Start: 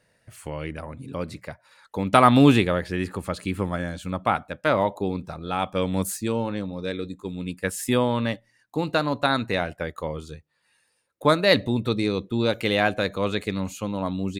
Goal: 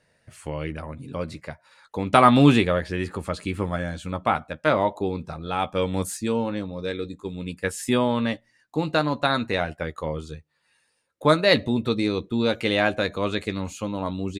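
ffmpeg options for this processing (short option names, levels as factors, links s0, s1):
-filter_complex "[0:a]lowpass=9700,asplit=2[s0][s1];[s1]adelay=13,volume=0.335[s2];[s0][s2]amix=inputs=2:normalize=0"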